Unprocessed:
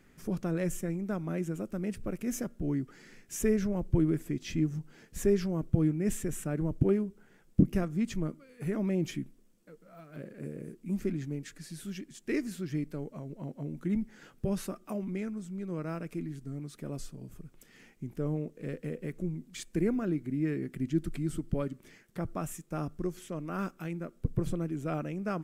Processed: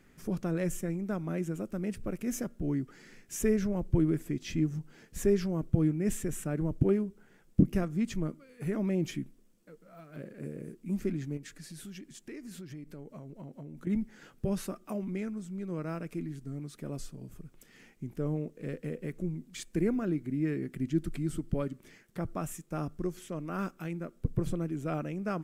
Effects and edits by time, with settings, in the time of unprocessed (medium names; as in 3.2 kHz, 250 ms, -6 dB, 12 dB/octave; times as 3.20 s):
11.37–13.87 s: compression, threshold -41 dBFS